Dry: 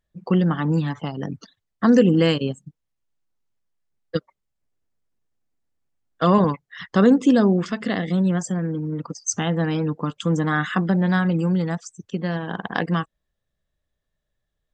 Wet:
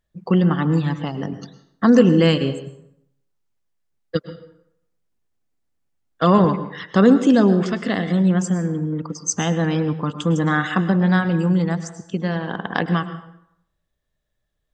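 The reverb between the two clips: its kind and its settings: plate-style reverb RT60 0.74 s, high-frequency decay 0.7×, pre-delay 95 ms, DRR 11.5 dB; trim +2 dB

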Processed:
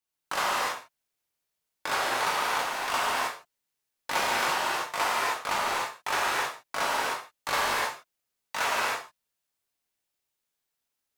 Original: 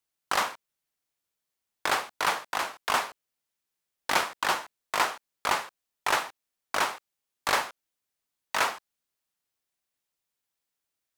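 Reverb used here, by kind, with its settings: gated-style reverb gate 340 ms flat, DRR -7 dB; trim -6 dB

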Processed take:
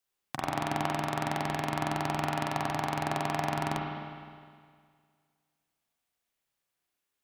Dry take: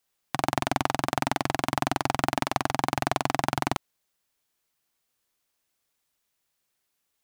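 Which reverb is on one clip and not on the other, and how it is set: spring tank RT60 2 s, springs 33/51 ms, chirp 70 ms, DRR -1 dB; trim -7.5 dB

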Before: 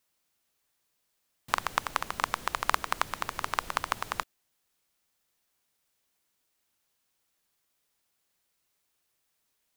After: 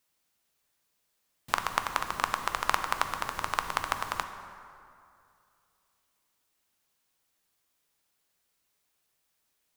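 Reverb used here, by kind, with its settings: plate-style reverb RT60 2.6 s, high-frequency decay 0.55×, DRR 7.5 dB

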